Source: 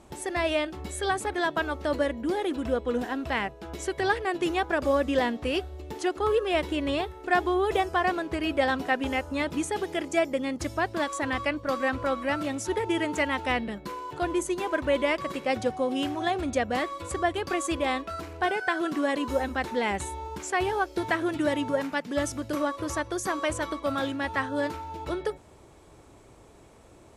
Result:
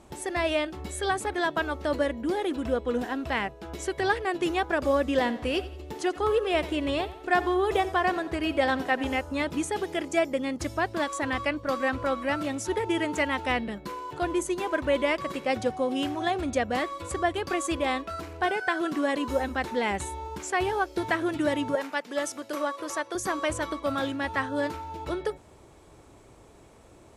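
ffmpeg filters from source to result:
-filter_complex "[0:a]asettb=1/sr,asplit=3[a][b][c];[a]atrim=end=5.034[d];[b]atrim=start=5.03:end=9.16,asetpts=PTS-STARTPTS,afade=t=in:d=0.004:c=qsin,afade=t=out:st=4.126:d=0.004:c=qsin,aecho=1:1:88|176|264|352:0.15|0.0613|0.0252|0.0103,atrim=end_sample=182133[e];[c]atrim=start=9.156[f];[d][e]acrossfade=d=0.004:c1=hsin:c2=qsin[g];[g][f]acrossfade=d=0.004:c1=qsin:c2=hsin,asettb=1/sr,asplit=3[h][i][j];[h]atrim=end=21.754[k];[i]atrim=start=21.75:end=23.15,asetpts=PTS-STARTPTS,afade=t=in:d=0.004:c=qsin,afade=t=out:st=1.396:d=0.004:c=qsin,highpass=380[l];[j]atrim=start=23.146[m];[k][l]acrossfade=d=0.004:c1=hsin:c2=qsin[n];[n][m]acrossfade=d=0.004:c1=qsin:c2=hsin"

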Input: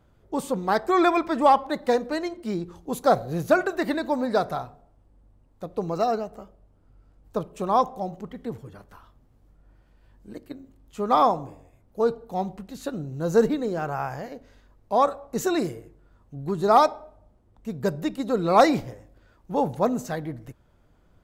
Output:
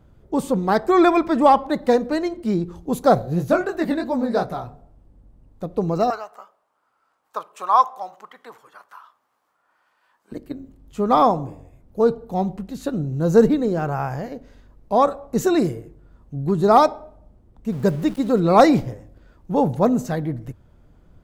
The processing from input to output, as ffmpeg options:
-filter_complex "[0:a]asplit=3[a][b][c];[a]afade=t=out:st=3.21:d=0.02[d];[b]flanger=delay=15:depth=6.8:speed=2.9,afade=t=in:st=3.21:d=0.02,afade=t=out:st=4.64:d=0.02[e];[c]afade=t=in:st=4.64:d=0.02[f];[d][e][f]amix=inputs=3:normalize=0,asettb=1/sr,asplit=3[g][h][i];[g]atrim=end=6.104[j];[h]atrim=start=6.1:end=10.32,asetpts=PTS-STARTPTS,afade=t=in:d=0.004:c=qsin,afade=t=out:st=4.216:d=0.004:c=qsin,highpass=f=1.1k:t=q:w=2.3[k];[i]atrim=start=10.316[l];[j][k]acrossfade=d=0.004:c1=hsin:c2=qsin[m];[m][l]acrossfade=d=0.004:c1=qsin:c2=hsin,asettb=1/sr,asplit=3[n][o][p];[n]atrim=end=17.724[q];[o]atrim=start=17.72:end=18.4,asetpts=PTS-STARTPTS,afade=t=in:d=0.004:c=qsin,afade=t=out:st=0.676:d=0.004:c=qsin,aeval=exprs='val(0)*gte(abs(val(0)),0.00891)':c=same[r];[p]atrim=start=18.396[s];[q][r]acrossfade=d=0.004:c1=hsin:c2=qsin[t];[t][s]acrossfade=d=0.004:c1=qsin:c2=hsin,lowshelf=f=390:g=8.5,bandreject=f=50:t=h:w=6,bandreject=f=100:t=h:w=6,volume=1.5dB"

